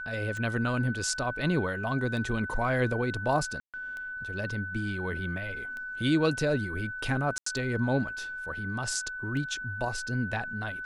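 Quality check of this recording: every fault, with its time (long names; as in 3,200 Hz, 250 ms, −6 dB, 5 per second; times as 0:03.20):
scratch tick 33 1/3 rpm −27 dBFS
whistle 1,500 Hz −35 dBFS
0:03.60–0:03.74: drop-out 137 ms
0:07.38–0:07.46: drop-out 84 ms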